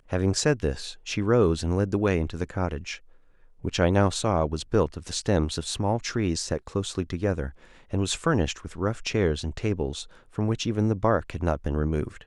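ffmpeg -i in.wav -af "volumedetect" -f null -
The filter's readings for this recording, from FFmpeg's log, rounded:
mean_volume: -26.2 dB
max_volume: -6.1 dB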